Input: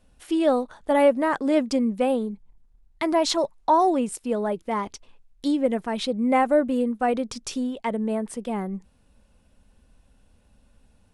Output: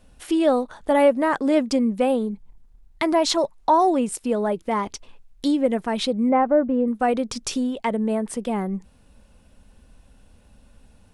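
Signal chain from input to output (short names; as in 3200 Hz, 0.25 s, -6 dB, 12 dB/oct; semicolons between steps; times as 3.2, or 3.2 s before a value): in parallel at +0.5 dB: compressor, threshold -32 dBFS, peak gain reduction 17.5 dB; 6.29–6.88 on the sum: LPF 1400 Hz 12 dB/oct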